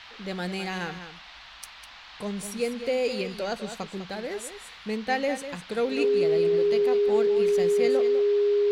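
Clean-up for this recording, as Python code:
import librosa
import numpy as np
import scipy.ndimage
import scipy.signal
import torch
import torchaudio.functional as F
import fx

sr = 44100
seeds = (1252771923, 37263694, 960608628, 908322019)

y = fx.notch(x, sr, hz=410.0, q=30.0)
y = fx.noise_reduce(y, sr, print_start_s=1.13, print_end_s=1.63, reduce_db=25.0)
y = fx.fix_echo_inverse(y, sr, delay_ms=201, level_db=-10.5)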